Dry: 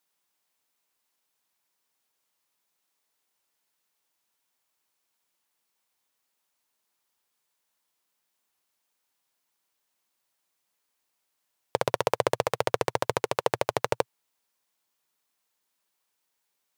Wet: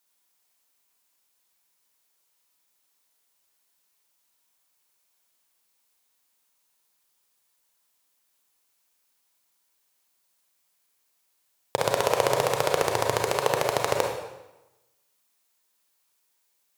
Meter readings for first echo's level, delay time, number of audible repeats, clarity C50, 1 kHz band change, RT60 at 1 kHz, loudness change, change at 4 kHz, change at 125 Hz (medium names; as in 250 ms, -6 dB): no echo, no echo, no echo, 3.5 dB, +3.0 dB, 1.0 s, +3.0 dB, +5.0 dB, +3.0 dB